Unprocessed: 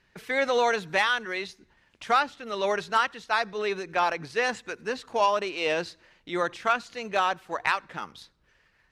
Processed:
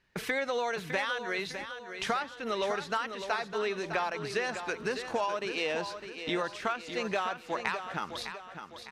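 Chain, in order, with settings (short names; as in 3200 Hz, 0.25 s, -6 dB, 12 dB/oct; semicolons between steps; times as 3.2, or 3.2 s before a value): gate -53 dBFS, range -14 dB; compressor 6:1, threshold -38 dBFS, peak gain reduction 18.5 dB; feedback echo 0.606 s, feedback 44%, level -9 dB; gain +8 dB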